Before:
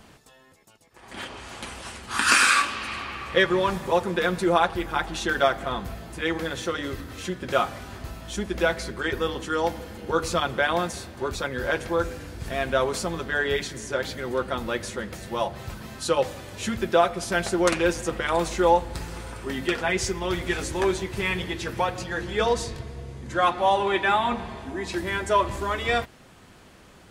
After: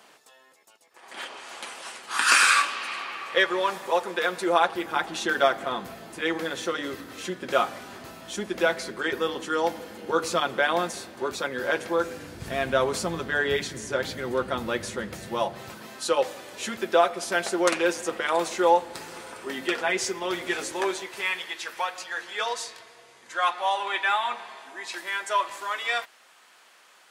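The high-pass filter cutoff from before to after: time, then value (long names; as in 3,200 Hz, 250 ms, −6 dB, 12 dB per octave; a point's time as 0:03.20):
0:04.28 480 Hz
0:04.97 230 Hz
0:12.04 230 Hz
0:12.49 93 Hz
0:15.17 93 Hz
0:15.95 330 Hz
0:20.58 330 Hz
0:21.47 910 Hz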